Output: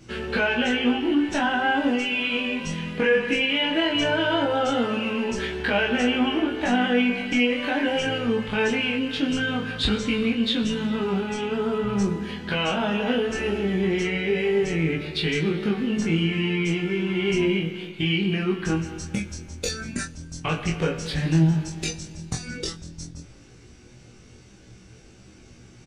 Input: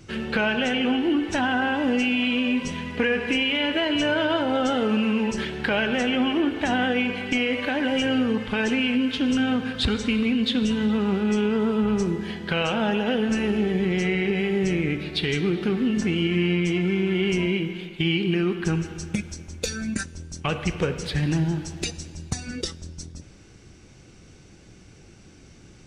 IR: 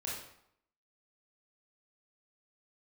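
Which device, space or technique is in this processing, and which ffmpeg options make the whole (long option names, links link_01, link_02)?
double-tracked vocal: -filter_complex "[0:a]asplit=2[link_01][link_02];[link_02]adelay=25,volume=-4dB[link_03];[link_01][link_03]amix=inputs=2:normalize=0,flanger=delay=16:depth=2.6:speed=0.16,volume=2dB"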